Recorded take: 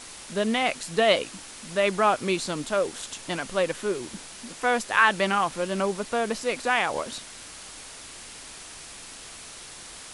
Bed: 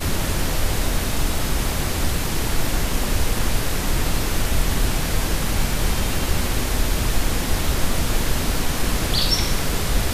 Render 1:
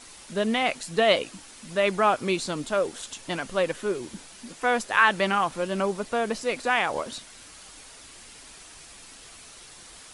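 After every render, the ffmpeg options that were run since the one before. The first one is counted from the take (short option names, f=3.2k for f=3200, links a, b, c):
-af "afftdn=nr=6:nf=-43"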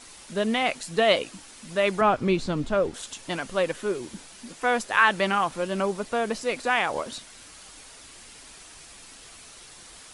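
-filter_complex "[0:a]asettb=1/sr,asplit=3[a][b][c];[a]atrim=end=2.014[d];[b]atrim=start=2.01:end=2.94,asetpts=PTS-STARTPTS,afade=t=in:d=0.004:c=qsin,afade=t=out:st=0.926:d=0.004:c=qsin,aemphasis=mode=reproduction:type=bsi[e];[c]atrim=start=2.936[f];[d][e]acrossfade=d=0.004:c1=hsin:c2=qsin[g];[g][f]acrossfade=d=0.004:c1=qsin:c2=hsin"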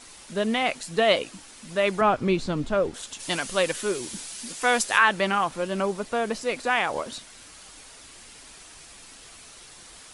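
-filter_complex "[0:a]asplit=3[a][b][c];[a]afade=t=out:st=3.19:d=0.02[d];[b]highshelf=f=2.8k:g=12,afade=t=in:st=3.19:d=0.02,afade=t=out:st=4.97:d=0.02[e];[c]afade=t=in:st=4.97:d=0.02[f];[d][e][f]amix=inputs=3:normalize=0"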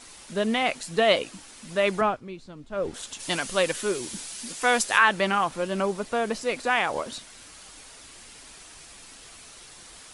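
-filter_complex "[0:a]asplit=3[a][b][c];[a]atrim=end=2.21,asetpts=PTS-STARTPTS,afade=t=out:st=1.98:d=0.23:silence=0.158489[d];[b]atrim=start=2.21:end=2.69,asetpts=PTS-STARTPTS,volume=-16dB[e];[c]atrim=start=2.69,asetpts=PTS-STARTPTS,afade=t=in:d=0.23:silence=0.158489[f];[d][e][f]concat=n=3:v=0:a=1"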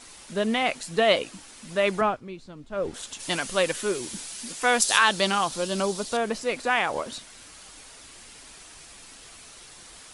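-filter_complex "[0:a]asettb=1/sr,asplit=3[a][b][c];[a]atrim=end=4.824[d];[b]atrim=start=4.82:end=6.17,asetpts=PTS-STARTPTS,afade=t=in:d=0.004:c=qsin,afade=t=out:st=1.346:d=0.004:c=qsin,highshelf=f=3k:t=q:w=1.5:g=9[e];[c]atrim=start=6.166[f];[d][e]acrossfade=d=0.004:c1=hsin:c2=qsin[g];[g][f]acrossfade=d=0.004:c1=qsin:c2=hsin"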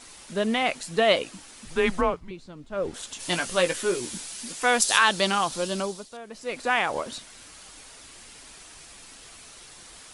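-filter_complex "[0:a]asettb=1/sr,asplit=3[a][b][c];[a]atrim=end=1.654[d];[b]atrim=start=1.65:end=2.31,asetpts=PTS-STARTPTS,afade=t=in:d=0.004:c=qsin,afade=t=out:st=0.656:d=0.004:c=qsin,afreqshift=-180[e];[c]atrim=start=2.306[f];[d][e]acrossfade=d=0.004:c1=hsin:c2=qsin[g];[g][f]acrossfade=d=0.004:c1=qsin:c2=hsin,asettb=1/sr,asplit=3[h][i][j];[h]atrim=end=3.144[k];[i]atrim=start=3.14:end=4.18,asetpts=PTS-STARTPTS,afade=t=in:d=0.004:c=qsin,afade=t=out:st=1.036:d=0.004:c=qsin,asplit=2[l][m];[m]adelay=17,volume=-7dB[n];[l][n]amix=inputs=2:normalize=0,atrim=end_sample=45864[o];[j]atrim=start=4.176[p];[k][o]acrossfade=d=0.004:c1=hsin:c2=qsin[q];[q][p]acrossfade=d=0.004:c1=qsin:c2=hsin,asplit=3[r][s][t];[r]atrim=end=6.09,asetpts=PTS-STARTPTS,afade=t=out:st=5.68:d=0.41:silence=0.177828[u];[s]atrim=start=6.09:end=6.29,asetpts=PTS-STARTPTS,volume=-15dB[v];[t]atrim=start=6.29,asetpts=PTS-STARTPTS,afade=t=in:d=0.41:silence=0.177828[w];[u][v][w]concat=n=3:v=0:a=1"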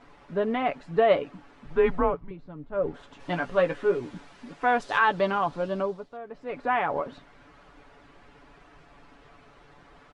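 -af "lowpass=1.4k,aecho=1:1:7:0.49"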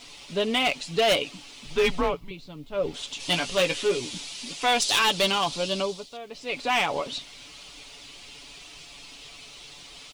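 -af "aexciter=amount=7:drive=9.2:freq=2.5k,asoftclip=type=hard:threshold=-17dB"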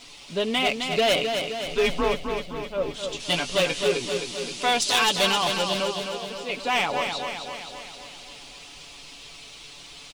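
-af "aecho=1:1:261|522|783|1044|1305|1566|1827|2088:0.501|0.296|0.174|0.103|0.0607|0.0358|0.0211|0.0125"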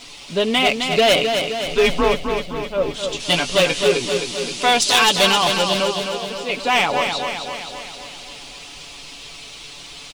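-af "volume=6.5dB"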